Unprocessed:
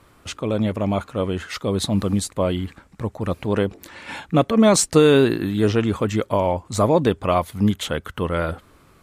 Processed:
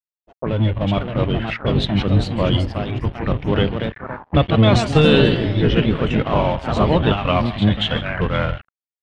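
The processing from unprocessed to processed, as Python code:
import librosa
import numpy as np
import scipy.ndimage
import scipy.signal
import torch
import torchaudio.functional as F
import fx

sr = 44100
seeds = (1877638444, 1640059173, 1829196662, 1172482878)

p1 = fx.octave_divider(x, sr, octaves=1, level_db=3.0)
p2 = p1 + fx.echo_feedback(p1, sr, ms=155, feedback_pct=53, wet_db=-12.5, dry=0)
p3 = fx.dmg_buzz(p2, sr, base_hz=400.0, harmonics=10, level_db=-41.0, tilt_db=-2, odd_only=False)
p4 = fx.rider(p3, sr, range_db=3, speed_s=0.5)
p5 = p3 + (p4 * librosa.db_to_amplitude(2.0))
p6 = fx.noise_reduce_blind(p5, sr, reduce_db=21)
p7 = fx.echo_pitch(p6, sr, ms=626, semitones=2, count=3, db_per_echo=-6.0)
p8 = np.sign(p7) * np.maximum(np.abs(p7) - 10.0 ** (-24.5 / 20.0), 0.0)
p9 = fx.envelope_lowpass(p8, sr, base_hz=570.0, top_hz=3100.0, q=4.0, full_db=-11.5, direction='up')
y = p9 * librosa.db_to_amplitude(-7.5)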